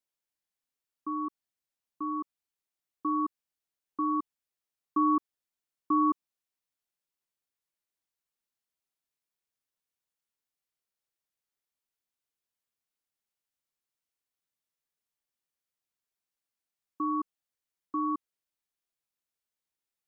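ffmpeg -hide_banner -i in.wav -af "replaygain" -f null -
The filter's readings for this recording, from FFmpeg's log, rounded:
track_gain = +14.8 dB
track_peak = 0.091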